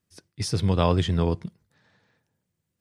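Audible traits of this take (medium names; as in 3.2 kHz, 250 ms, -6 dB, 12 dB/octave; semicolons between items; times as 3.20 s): noise floor -81 dBFS; spectral tilt -6.5 dB/octave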